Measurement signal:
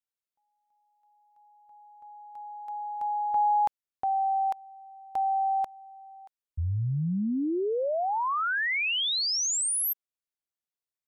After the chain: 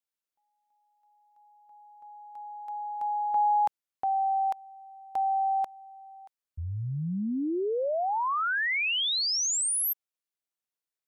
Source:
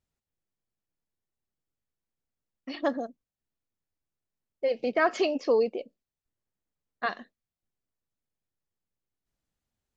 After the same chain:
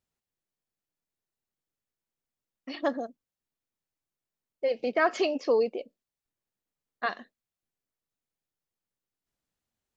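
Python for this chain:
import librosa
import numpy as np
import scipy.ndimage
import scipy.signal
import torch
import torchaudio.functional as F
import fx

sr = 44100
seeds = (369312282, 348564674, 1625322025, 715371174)

y = fx.low_shelf(x, sr, hz=130.0, db=-8.0)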